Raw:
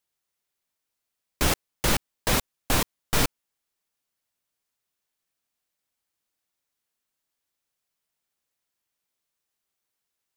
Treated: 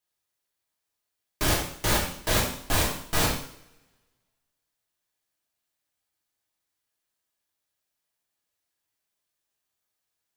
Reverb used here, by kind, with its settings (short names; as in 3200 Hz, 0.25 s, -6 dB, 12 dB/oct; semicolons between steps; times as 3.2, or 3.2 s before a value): two-slope reverb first 0.6 s, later 1.6 s, from -23 dB, DRR -4.5 dB; gain -5.5 dB